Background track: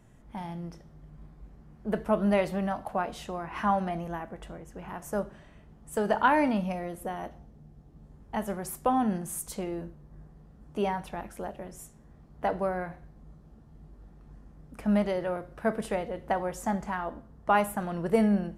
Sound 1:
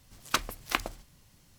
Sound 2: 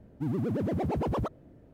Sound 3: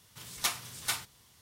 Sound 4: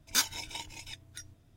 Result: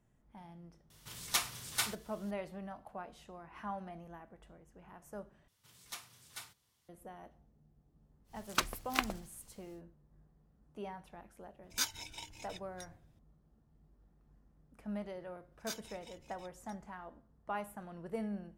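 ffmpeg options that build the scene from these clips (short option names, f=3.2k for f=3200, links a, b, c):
-filter_complex "[3:a]asplit=2[a][b];[4:a]asplit=2[c][d];[0:a]volume=-15.5dB,asplit=2[e][f];[e]atrim=end=5.484[g];[b]atrim=end=1.41,asetpts=PTS-STARTPTS,volume=-15.5dB[h];[f]atrim=start=6.886[i];[a]atrim=end=1.41,asetpts=PTS-STARTPTS,volume=-1.5dB,afade=t=in:d=0.004:c=hsin,afade=t=out:st=1.406:d=0.004:c=hsin,adelay=900[j];[1:a]atrim=end=1.58,asetpts=PTS-STARTPTS,volume=-4dB,afade=t=in:d=0.1,afade=t=out:st=1.48:d=0.1,adelay=8240[k];[c]atrim=end=1.56,asetpts=PTS-STARTPTS,volume=-7dB,afade=t=in:d=0.004:c=hsin,afade=t=out:st=1.556:d=0.004:c=hsin,adelay=11630[l];[d]atrim=end=1.56,asetpts=PTS-STARTPTS,volume=-16.5dB,afade=t=in:d=0.004:c=hsin,afade=t=out:st=1.556:d=0.004:c=hsin,adelay=15520[m];[g][h]acrossfade=d=0.004:c1=hsin:c2=hsin[n];[n][i]acrossfade=d=0.004:c1=hsin:c2=hsin[o];[o][j][k][l][m]amix=inputs=5:normalize=0"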